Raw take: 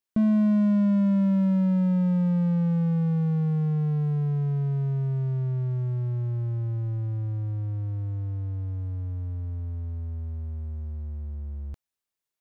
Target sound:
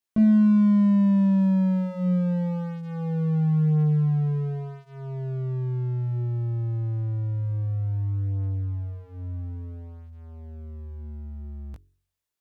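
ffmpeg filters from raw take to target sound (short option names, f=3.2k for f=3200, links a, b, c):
-af "bandreject=f=45.94:t=h:w=4,bandreject=f=91.88:t=h:w=4,bandreject=f=137.82:t=h:w=4,bandreject=f=183.76:t=h:w=4,bandreject=f=229.7:t=h:w=4,bandreject=f=275.64:t=h:w=4,bandreject=f=321.58:t=h:w=4,bandreject=f=367.52:t=h:w=4,bandreject=f=413.46:t=h:w=4,flanger=delay=18:depth=2.9:speed=0.19,volume=4.5dB"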